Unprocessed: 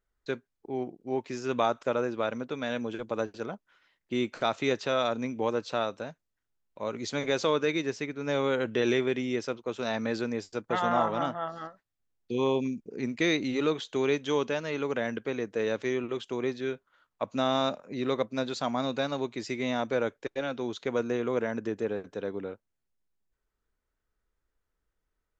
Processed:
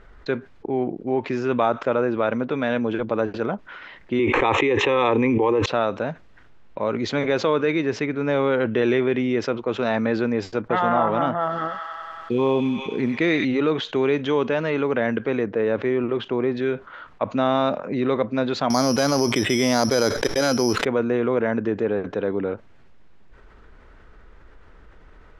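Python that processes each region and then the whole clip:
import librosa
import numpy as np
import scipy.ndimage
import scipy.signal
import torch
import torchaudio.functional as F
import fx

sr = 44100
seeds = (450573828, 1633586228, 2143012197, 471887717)

y = fx.chain(x, sr, fx.fixed_phaser(hz=960.0, stages=8),
    fx.env_flatten(amount_pct=100), at=(4.19, 5.66))
y = fx.chain(y, sr, fx.echo_wet_highpass(ms=95, feedback_pct=74, hz=1600.0, wet_db=-5.5),
    fx.quant_companded(bits=6), at=(11.4, 13.45))
y = fx.chain(y, sr, fx.lowpass(hz=6600.0, slope=12),
    fx.high_shelf(hz=3000.0, db=-10.0), at=(15.46, 16.57))
y = fx.chain(y, sr, fx.resample_bad(factor=8, down='filtered', up='zero_stuff'),
    fx.env_flatten(amount_pct=70), at=(18.7, 20.85))
y = scipy.signal.sosfilt(scipy.signal.butter(2, 2500.0, 'lowpass', fs=sr, output='sos'), y)
y = fx.env_flatten(y, sr, amount_pct=50)
y = y * 10.0 ** (5.0 / 20.0)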